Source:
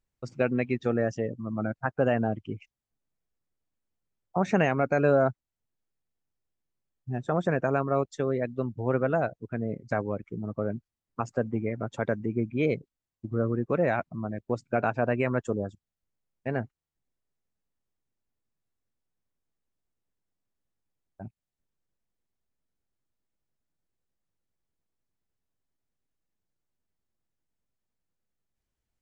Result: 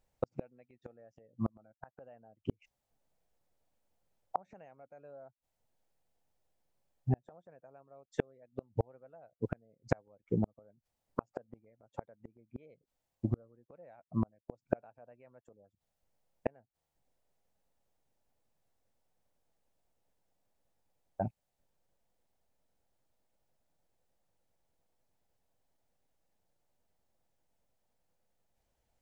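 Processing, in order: band shelf 660 Hz +8.5 dB 1.1 oct; flipped gate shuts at -22 dBFS, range -41 dB; gain +4.5 dB

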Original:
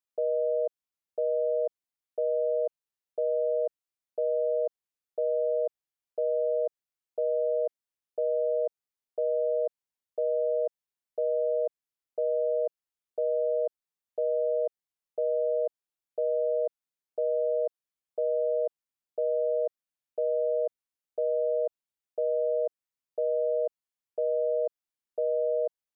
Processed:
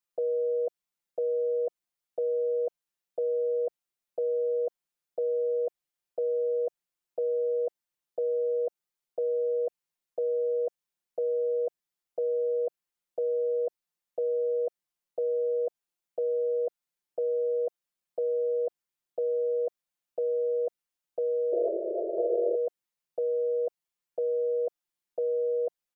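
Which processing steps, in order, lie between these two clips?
comb 5.7 ms, depth 94%; painted sound noise, 21.52–22.56, 330–690 Hz -31 dBFS

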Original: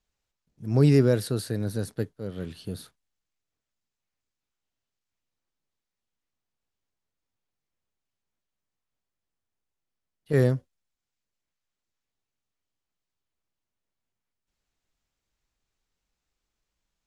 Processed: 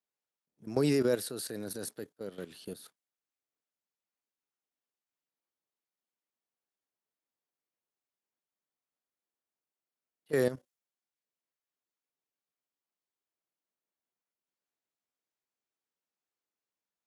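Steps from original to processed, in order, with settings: HPF 280 Hz 12 dB/oct; high shelf 7500 Hz +9 dB; level quantiser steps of 13 dB; mismatched tape noise reduction decoder only

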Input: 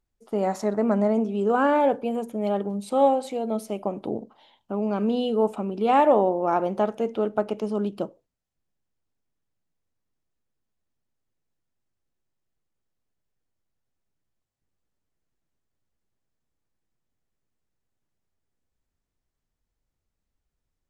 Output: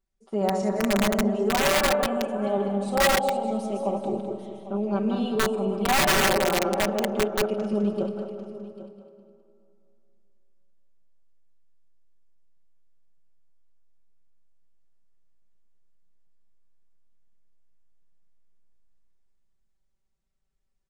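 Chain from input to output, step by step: regenerating reverse delay 0.103 s, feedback 61%, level -4.5 dB; downsampling 22050 Hz; on a send: echo 0.795 s -15.5 dB; on the sum: digital reverb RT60 2.6 s, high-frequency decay 0.45×, pre-delay 0.105 s, DRR 10.5 dB; wrapped overs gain 12 dB; comb 5.2 ms, depth 89%; gain -5.5 dB

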